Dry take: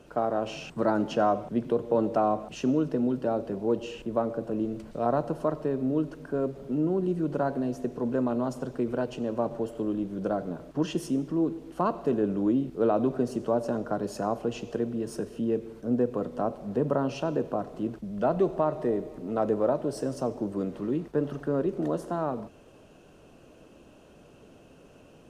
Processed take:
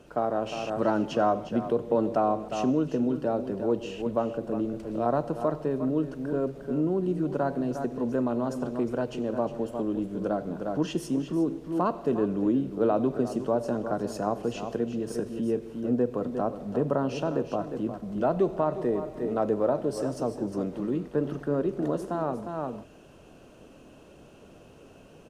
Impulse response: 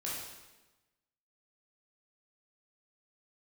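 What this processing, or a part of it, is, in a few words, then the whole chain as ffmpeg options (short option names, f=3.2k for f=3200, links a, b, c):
ducked delay: -filter_complex "[0:a]asplit=3[a][b][c];[b]adelay=356,volume=-2dB[d];[c]apad=whole_len=1131193[e];[d][e]sidechaincompress=threshold=-34dB:ratio=8:attack=23:release=390[f];[a][f]amix=inputs=2:normalize=0"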